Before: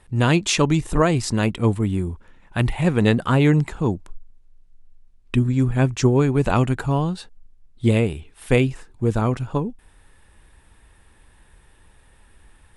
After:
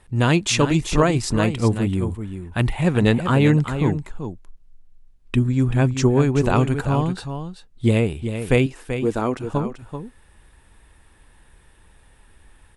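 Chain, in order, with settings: 8.66–9.44 resonant low shelf 210 Hz -8.5 dB, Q 1.5; echo 0.385 s -9 dB

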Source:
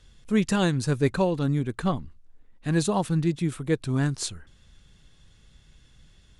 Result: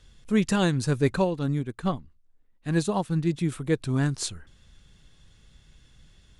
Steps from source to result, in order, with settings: 1.24–3.3 upward expander 1.5:1, over -40 dBFS

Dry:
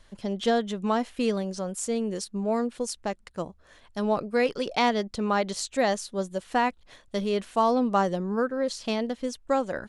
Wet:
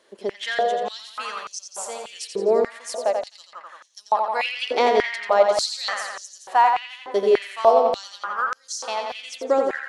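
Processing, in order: tape echo 87 ms, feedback 77%, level -4 dB, low-pass 6000 Hz; stepped high-pass 3.4 Hz 400–6000 Hz

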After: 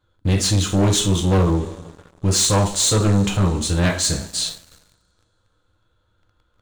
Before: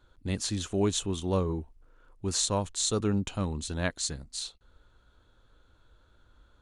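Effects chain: two-slope reverb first 0.33 s, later 2.4 s, from -21 dB, DRR -0.5 dB; sample leveller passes 3

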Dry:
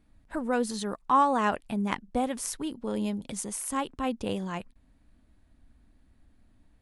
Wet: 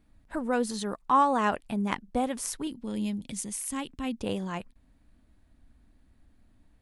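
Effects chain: 2.67–4.19 band shelf 760 Hz -8 dB 2.3 oct

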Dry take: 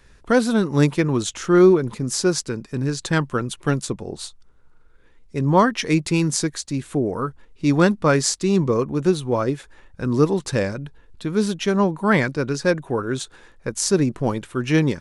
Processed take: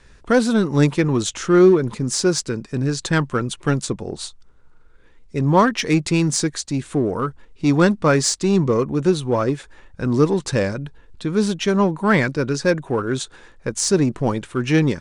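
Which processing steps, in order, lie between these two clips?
steep low-pass 9700 Hz 36 dB/oct; in parallel at -9 dB: overloaded stage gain 21 dB

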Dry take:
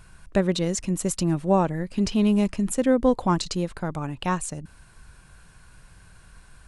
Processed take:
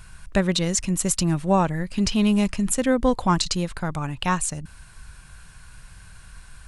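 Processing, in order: bell 380 Hz -8.5 dB 2.4 oct; gain +6.5 dB

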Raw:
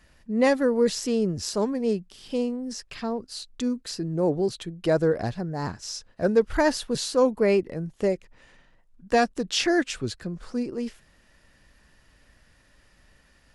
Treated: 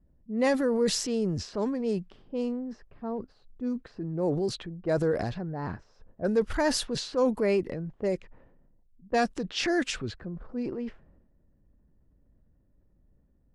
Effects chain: transient shaper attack -2 dB, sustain +7 dB; low-pass opened by the level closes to 320 Hz, open at -20 dBFS; gain -4 dB

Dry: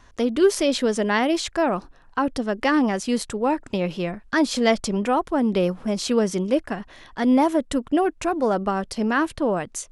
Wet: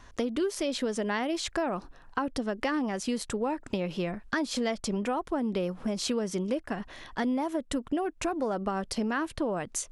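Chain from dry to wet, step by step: compressor, threshold -27 dBFS, peak gain reduction 14 dB

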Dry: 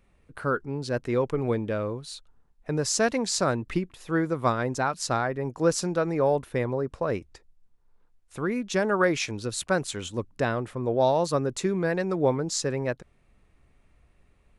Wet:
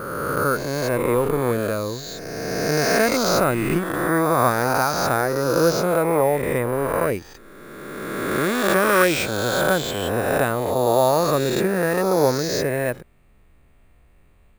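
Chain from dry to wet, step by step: spectral swells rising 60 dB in 2.23 s; careless resampling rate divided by 4×, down filtered, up hold; gain +2.5 dB

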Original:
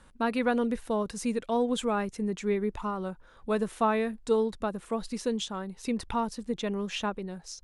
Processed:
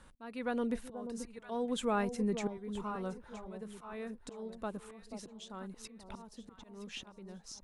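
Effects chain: auto swell 0.784 s; echo with dull and thin repeats by turns 0.484 s, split 900 Hz, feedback 56%, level -8.5 dB; gain -2 dB

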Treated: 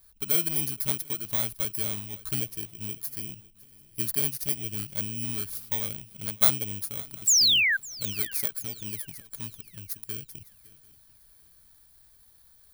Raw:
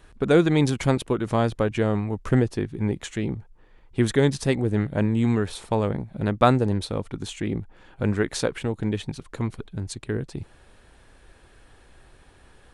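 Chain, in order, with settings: FFT order left unsorted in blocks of 16 samples; high shelf 7900 Hz +10 dB; painted sound fall, 7.27–7.77, 1500–7900 Hz -13 dBFS; passive tone stack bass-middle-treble 5-5-5; swung echo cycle 0.742 s, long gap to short 3:1, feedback 31%, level -21 dB

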